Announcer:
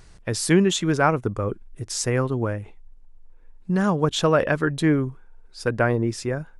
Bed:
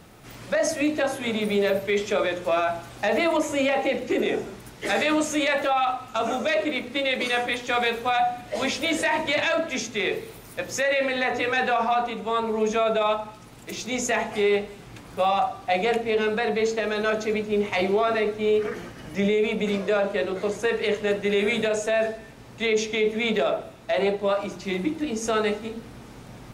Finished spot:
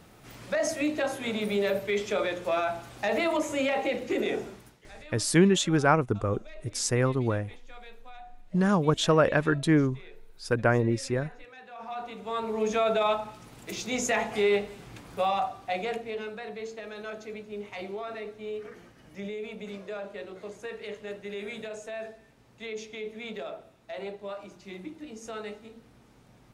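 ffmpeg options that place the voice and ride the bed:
-filter_complex "[0:a]adelay=4850,volume=-2.5dB[a];[1:a]volume=18.5dB,afade=t=out:st=4.46:d=0.38:silence=0.0891251,afade=t=in:st=11.7:d=1.15:silence=0.0707946,afade=t=out:st=14.84:d=1.5:silence=0.251189[b];[a][b]amix=inputs=2:normalize=0"

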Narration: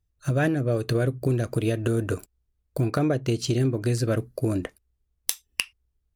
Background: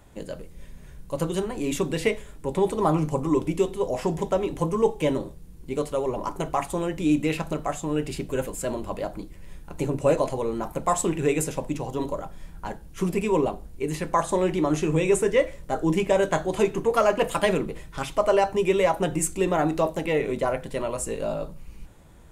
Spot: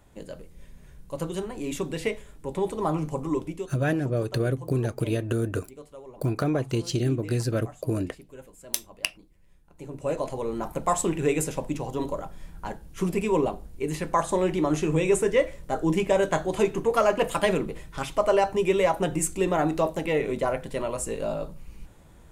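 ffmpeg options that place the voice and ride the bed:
-filter_complex "[0:a]adelay=3450,volume=-2dB[a];[1:a]volume=12.5dB,afade=t=out:st=3.34:d=0.4:silence=0.211349,afade=t=in:st=9.75:d=0.9:silence=0.141254[b];[a][b]amix=inputs=2:normalize=0"

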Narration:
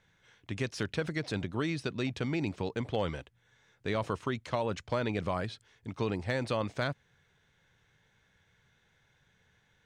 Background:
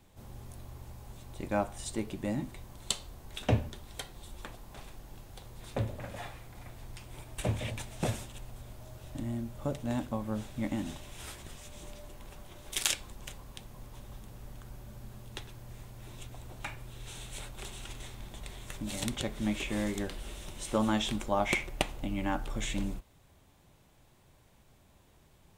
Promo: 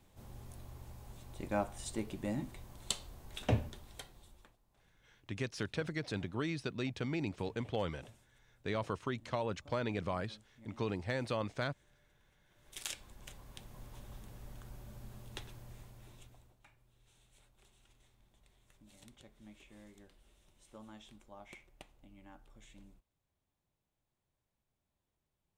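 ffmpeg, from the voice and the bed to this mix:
-filter_complex "[0:a]adelay=4800,volume=-4.5dB[a];[1:a]volume=18dB,afade=t=out:st=3.62:d=0.94:silence=0.0841395,afade=t=in:st=12.46:d=1.34:silence=0.0794328,afade=t=out:st=15.52:d=1.05:silence=0.0891251[b];[a][b]amix=inputs=2:normalize=0"

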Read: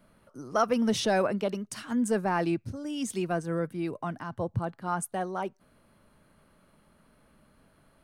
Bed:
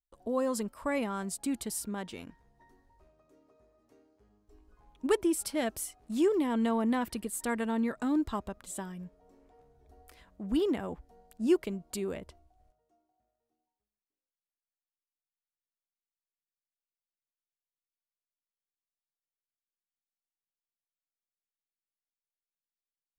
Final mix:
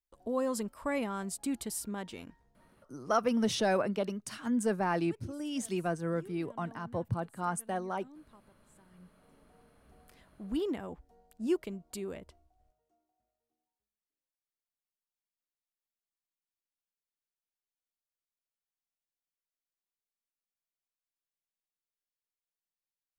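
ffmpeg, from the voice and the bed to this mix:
-filter_complex "[0:a]adelay=2550,volume=-3dB[a];[1:a]volume=19dB,afade=t=out:st=2.25:d=0.76:silence=0.0668344,afade=t=in:st=8.86:d=0.48:silence=0.0944061[b];[a][b]amix=inputs=2:normalize=0"

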